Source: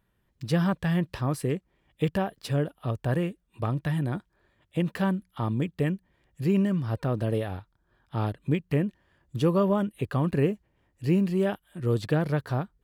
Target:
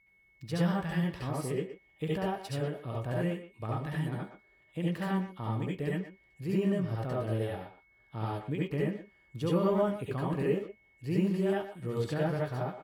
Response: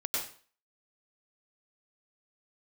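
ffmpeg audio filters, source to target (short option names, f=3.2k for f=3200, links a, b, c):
-filter_complex "[0:a]aeval=exprs='val(0)+0.00178*sin(2*PI*2200*n/s)':c=same,asplit=2[a][b];[b]adelay=120,highpass=300,lowpass=3.4k,asoftclip=type=hard:threshold=-21.5dB,volume=-10dB[c];[a][c]amix=inputs=2:normalize=0[d];[1:a]atrim=start_sample=2205,atrim=end_sample=6174,asetrate=61740,aresample=44100[e];[d][e]afir=irnorm=-1:irlink=0,volume=-5.5dB"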